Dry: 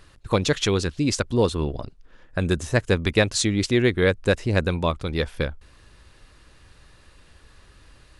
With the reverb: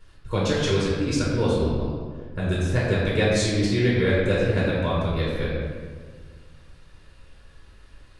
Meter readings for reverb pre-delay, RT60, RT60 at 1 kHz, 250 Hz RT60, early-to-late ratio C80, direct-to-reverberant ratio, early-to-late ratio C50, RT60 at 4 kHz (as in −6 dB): 3 ms, 1.6 s, 1.4 s, 2.0 s, 1.0 dB, −7.0 dB, −1.0 dB, 1.0 s